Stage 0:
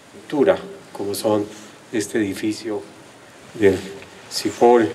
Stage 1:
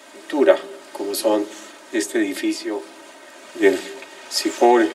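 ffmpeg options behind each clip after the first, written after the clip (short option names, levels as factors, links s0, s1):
-af "highpass=370,aecho=1:1:3.2:0.66,volume=1.12"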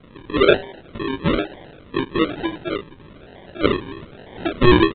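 -af "flanger=delay=17.5:depth=2.9:speed=1,aresample=8000,acrusher=samples=9:mix=1:aa=0.000001:lfo=1:lforange=5.4:lforate=1.1,aresample=44100,volume=1.41"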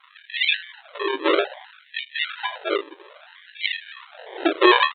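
-af "afftfilt=real='re*gte(b*sr/1024,290*pow(1800/290,0.5+0.5*sin(2*PI*0.61*pts/sr)))':imag='im*gte(b*sr/1024,290*pow(1800/290,0.5+0.5*sin(2*PI*0.61*pts/sr)))':win_size=1024:overlap=0.75,volume=1.5"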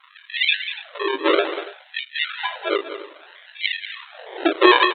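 -af "aecho=1:1:191|286:0.282|0.126,volume=1.19"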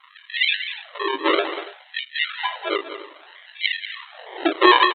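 -af "aecho=1:1:1:0.34" -ar 44100 -c:a libmp3lame -b:a 80k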